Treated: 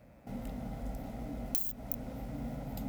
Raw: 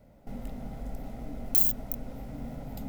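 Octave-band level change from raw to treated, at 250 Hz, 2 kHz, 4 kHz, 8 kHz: -0.5 dB, n/a, -4.0 dB, -7.5 dB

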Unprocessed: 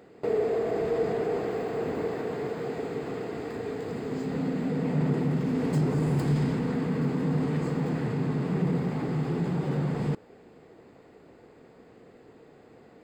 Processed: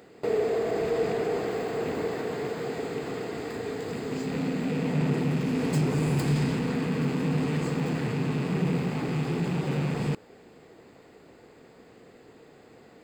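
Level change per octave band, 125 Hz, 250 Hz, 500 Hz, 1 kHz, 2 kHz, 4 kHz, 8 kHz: 0.0 dB, 0.0 dB, +0.5 dB, +1.0 dB, +4.5 dB, +7.0 dB, n/a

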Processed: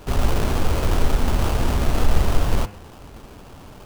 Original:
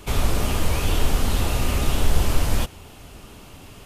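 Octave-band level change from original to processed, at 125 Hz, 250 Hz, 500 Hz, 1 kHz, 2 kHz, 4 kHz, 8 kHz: +1.5, +2.0, +2.5, +2.0, -0.5, -3.0, -4.5 dB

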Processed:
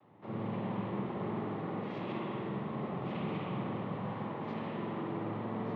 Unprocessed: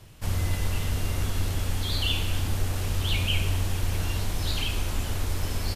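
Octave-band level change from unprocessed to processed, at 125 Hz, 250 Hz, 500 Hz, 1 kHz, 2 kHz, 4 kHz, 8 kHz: -13.0 dB, +1.5 dB, +1.0 dB, 0.0 dB, -12.5 dB, -24.0 dB, under -40 dB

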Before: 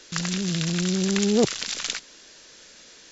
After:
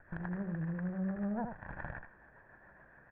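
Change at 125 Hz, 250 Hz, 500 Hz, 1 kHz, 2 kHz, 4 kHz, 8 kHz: -11.0 dB, -12.5 dB, -19.0 dB, -7.5 dB, -13.0 dB, under -40 dB, n/a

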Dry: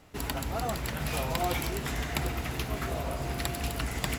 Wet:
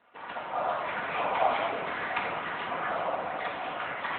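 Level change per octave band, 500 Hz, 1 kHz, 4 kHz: +3.0, +6.5, -4.5 dB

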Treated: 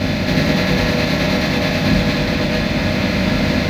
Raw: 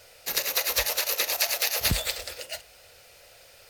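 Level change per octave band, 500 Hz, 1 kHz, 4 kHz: +17.0, +14.0, +6.5 dB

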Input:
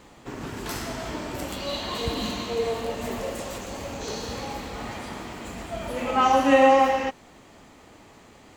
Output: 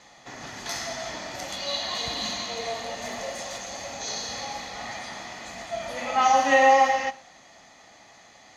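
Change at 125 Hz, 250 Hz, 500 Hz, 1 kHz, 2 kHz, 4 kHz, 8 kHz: -10.0, -9.5, -3.5, +1.0, +3.5, +3.0, +5.0 dB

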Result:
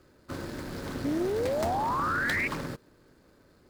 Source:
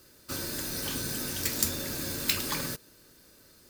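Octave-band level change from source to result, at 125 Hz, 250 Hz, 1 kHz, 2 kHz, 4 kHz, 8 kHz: +2.0, +5.0, +13.0, +7.0, -10.5, -15.5 dB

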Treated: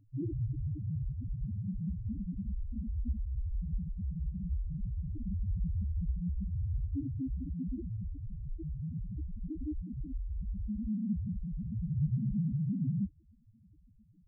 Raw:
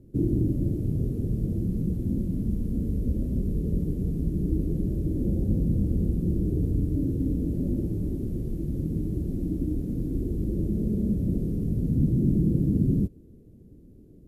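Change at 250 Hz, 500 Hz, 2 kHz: -11.0 dB, under -20 dB, n/a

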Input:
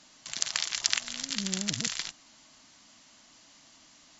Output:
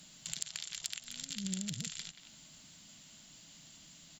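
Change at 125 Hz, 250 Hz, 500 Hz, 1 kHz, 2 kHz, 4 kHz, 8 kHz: -3.0 dB, -4.5 dB, -13.5 dB, -16.5 dB, -14.0 dB, -11.0 dB, n/a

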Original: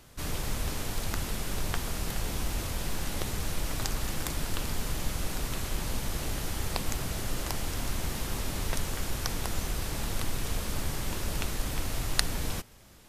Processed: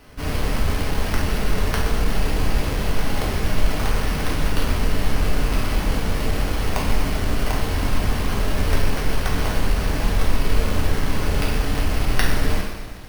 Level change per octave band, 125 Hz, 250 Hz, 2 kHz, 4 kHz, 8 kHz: +11.5, +11.5, +10.5, +6.0, +1.0 dB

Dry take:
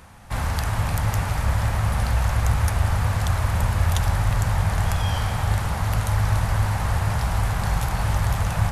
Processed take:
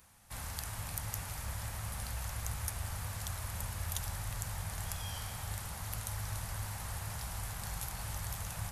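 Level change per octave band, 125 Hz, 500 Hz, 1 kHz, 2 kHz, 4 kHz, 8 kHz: -19.5, -19.0, -18.0, -16.0, -11.0, -5.5 dB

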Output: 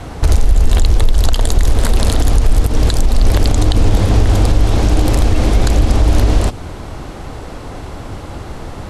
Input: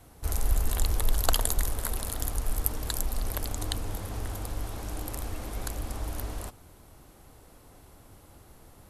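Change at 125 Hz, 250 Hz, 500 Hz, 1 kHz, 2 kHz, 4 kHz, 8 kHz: +21.0, +22.0, +19.0, +15.0, +15.0, +13.5, +8.0 dB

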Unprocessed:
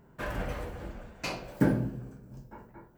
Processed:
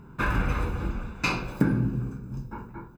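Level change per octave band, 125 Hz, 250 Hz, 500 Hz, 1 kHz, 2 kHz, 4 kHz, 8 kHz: +6.5, +3.5, 0.0, +8.0, +9.0, +5.5, +4.0 dB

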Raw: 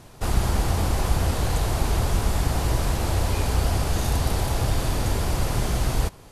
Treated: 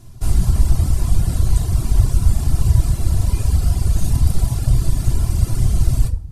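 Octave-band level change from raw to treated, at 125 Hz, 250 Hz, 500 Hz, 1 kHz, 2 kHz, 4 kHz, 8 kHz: +7.5, +2.0, -7.0, -8.5, -9.0, -4.5, +1.0 dB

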